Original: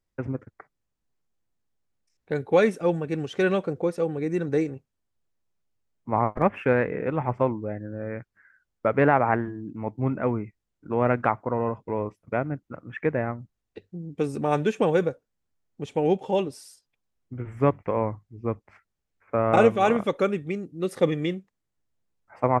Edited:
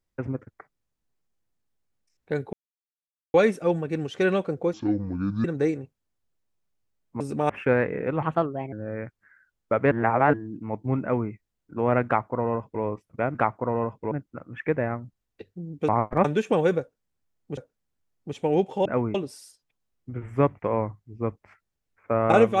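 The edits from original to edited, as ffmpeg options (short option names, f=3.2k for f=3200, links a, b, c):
-filter_complex "[0:a]asplit=17[a][b][c][d][e][f][g][h][i][j][k][l][m][n][o][p][q];[a]atrim=end=2.53,asetpts=PTS-STARTPTS,afade=t=out:st=2.526:d=0.004:c=hsin,apad=pad_dur=0.81[r];[b]atrim=start=2.53:end=3.924,asetpts=PTS-STARTPTS,afade=t=in:d=0.004:c=hsin[s];[c]atrim=start=3.92:end=4.37,asetpts=PTS-STARTPTS,asetrate=27783,aresample=44100[t];[d]atrim=start=4.366:end=6.132[u];[e]atrim=start=14.248:end=14.542[v];[f]atrim=start=6.488:end=7.224[w];[g]atrim=start=7.22:end=7.86,asetpts=PTS-STARTPTS,asetrate=56448,aresample=44100[x];[h]atrim=start=7.856:end=9.052[y];[i]atrim=start=9.048:end=9.472,asetpts=PTS-STARTPTS,areverse[z];[j]atrim=start=9.468:end=12.482[aa];[k]atrim=start=11.188:end=11.962[ab];[l]atrim=start=12.478:end=14.252[ac];[m]atrim=start=6.128:end=6.492[ad];[n]atrim=start=14.538:end=15.872[ae];[o]atrim=start=15.098:end=16.382[af];[p]atrim=start=10.148:end=10.442[ag];[q]atrim=start=16.378[ah];[r][s]concat=n=2:v=0:a=1[ai];[ai][t]acrossfade=d=0.004:c1=hsin:c2=hsin[aj];[aj][u]acrossfade=d=0.004:c1=hsin:c2=hsin[ak];[ak][v]acrossfade=d=0.004:c1=hsin:c2=hsin[al];[al][w]acrossfade=d=0.004:c1=hsin:c2=hsin[am];[am][x]acrossfade=d=0.004:c1=hsin:c2=hsin[an];[an][y]acrossfade=d=0.004:c1=hsin:c2=hsin[ao];[ao][z]acrossfade=d=0.004:c1=hsin:c2=hsin[ap];[ap][aa]acrossfade=d=0.004:c1=hsin:c2=hsin[aq];[aq][ab]acrossfade=d=0.004:c1=hsin:c2=hsin[ar];[ar][ac]acrossfade=d=0.004:c1=hsin:c2=hsin[as];[as][ad]acrossfade=d=0.004:c1=hsin:c2=hsin[at];[at][ae]acrossfade=d=0.004:c1=hsin:c2=hsin[au];[au][af]acrossfade=d=0.004:c1=hsin:c2=hsin[av];[av][ag]acrossfade=d=0.004:c1=hsin:c2=hsin[aw];[aw][ah]acrossfade=d=0.004:c1=hsin:c2=hsin"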